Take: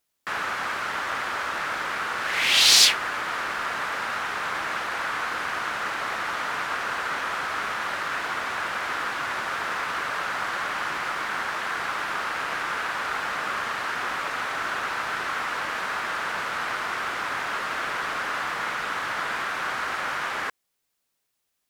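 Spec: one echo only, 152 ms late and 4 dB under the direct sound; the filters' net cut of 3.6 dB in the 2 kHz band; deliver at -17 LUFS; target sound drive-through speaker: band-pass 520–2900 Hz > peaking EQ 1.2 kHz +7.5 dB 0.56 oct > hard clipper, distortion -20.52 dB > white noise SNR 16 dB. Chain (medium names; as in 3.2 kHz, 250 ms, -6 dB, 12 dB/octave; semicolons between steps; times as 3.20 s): band-pass 520–2900 Hz; peaking EQ 1.2 kHz +7.5 dB 0.56 oct; peaking EQ 2 kHz -7.5 dB; delay 152 ms -4 dB; hard clipper -20 dBFS; white noise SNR 16 dB; trim +9 dB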